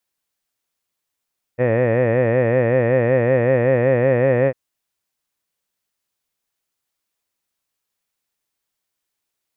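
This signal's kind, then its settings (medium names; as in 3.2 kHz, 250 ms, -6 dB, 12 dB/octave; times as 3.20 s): formant-synthesis vowel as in head, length 2.95 s, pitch 118 Hz, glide +1.5 st, vibrato depth 1.2 st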